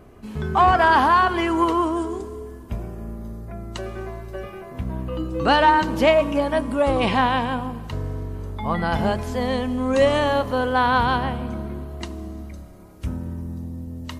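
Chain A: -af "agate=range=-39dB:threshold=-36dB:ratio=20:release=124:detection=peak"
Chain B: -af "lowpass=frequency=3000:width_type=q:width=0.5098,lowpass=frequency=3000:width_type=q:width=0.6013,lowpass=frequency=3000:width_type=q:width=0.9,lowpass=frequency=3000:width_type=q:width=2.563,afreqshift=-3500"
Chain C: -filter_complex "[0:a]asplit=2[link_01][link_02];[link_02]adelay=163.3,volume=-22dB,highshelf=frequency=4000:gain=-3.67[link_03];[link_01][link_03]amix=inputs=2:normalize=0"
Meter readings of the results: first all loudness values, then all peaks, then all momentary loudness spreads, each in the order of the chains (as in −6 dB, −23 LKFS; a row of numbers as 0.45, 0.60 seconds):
−21.0, −18.5, −21.0 LKFS; −6.5, −5.0, −6.0 dBFS; 18, 16, 18 LU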